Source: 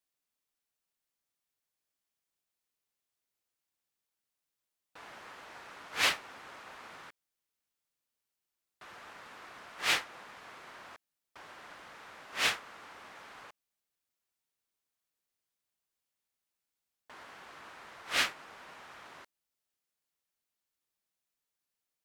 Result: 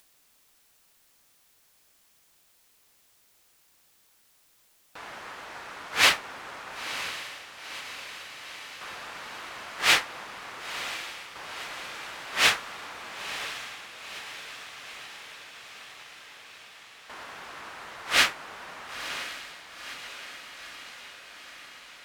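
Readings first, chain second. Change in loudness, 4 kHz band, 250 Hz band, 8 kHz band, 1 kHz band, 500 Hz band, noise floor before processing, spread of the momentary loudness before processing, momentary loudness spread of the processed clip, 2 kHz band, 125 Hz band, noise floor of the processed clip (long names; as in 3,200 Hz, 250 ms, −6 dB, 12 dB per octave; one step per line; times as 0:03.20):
+1.0 dB, +9.0 dB, +7.5 dB, +9.0 dB, +9.0 dB, +8.0 dB, below −85 dBFS, 20 LU, 22 LU, +9.0 dB, +8.5 dB, −64 dBFS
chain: low-shelf EQ 130 Hz +6 dB
feedback delay with all-pass diffusion 988 ms, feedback 68%, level −11 dB
upward compression, threshold −57 dBFS
low-shelf EQ 340 Hz −4.5 dB
level +8.5 dB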